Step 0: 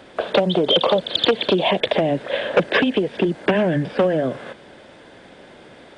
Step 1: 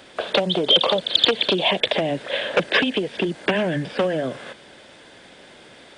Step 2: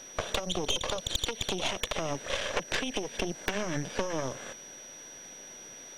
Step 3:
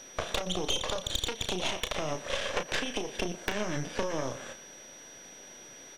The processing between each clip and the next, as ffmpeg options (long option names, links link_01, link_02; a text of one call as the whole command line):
ffmpeg -i in.wav -af "highshelf=frequency=2100:gain=11,volume=-4.5dB" out.wav
ffmpeg -i in.wav -af "acompressor=threshold=-23dB:ratio=10,aeval=exprs='val(0)+0.0112*sin(2*PI*5800*n/s)':channel_layout=same,aeval=exprs='0.398*(cos(1*acos(clip(val(0)/0.398,-1,1)))-cos(1*PI/2))+0.1*(cos(6*acos(clip(val(0)/0.398,-1,1)))-cos(6*PI/2))':channel_layout=same,volume=-6.5dB" out.wav
ffmpeg -i in.wav -filter_complex "[0:a]asplit=2[link_01][link_02];[link_02]adelay=33,volume=-8dB[link_03];[link_01][link_03]amix=inputs=2:normalize=0,asplit=2[link_04][link_05];[link_05]adelay=120,highpass=300,lowpass=3400,asoftclip=type=hard:threshold=-21.5dB,volume=-15dB[link_06];[link_04][link_06]amix=inputs=2:normalize=0,volume=-1dB" out.wav